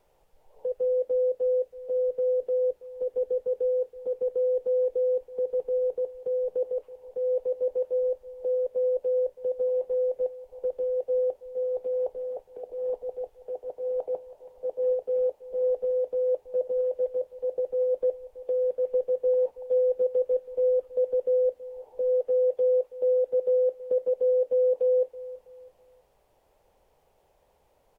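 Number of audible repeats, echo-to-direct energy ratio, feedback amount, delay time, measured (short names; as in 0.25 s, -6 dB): 2, -17.5 dB, 34%, 0.326 s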